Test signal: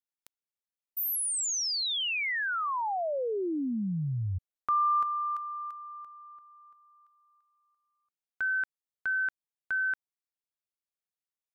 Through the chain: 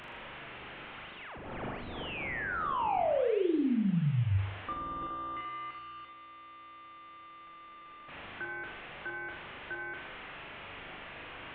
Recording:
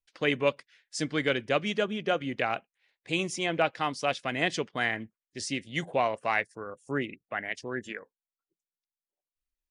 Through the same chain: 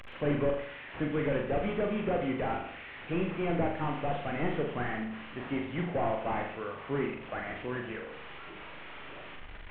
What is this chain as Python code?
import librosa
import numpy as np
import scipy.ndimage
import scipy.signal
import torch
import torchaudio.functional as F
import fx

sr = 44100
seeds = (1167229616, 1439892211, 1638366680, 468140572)

y = fx.delta_mod(x, sr, bps=16000, step_db=-41.0)
y = fx.room_flutter(y, sr, wall_m=7.0, rt60_s=0.62)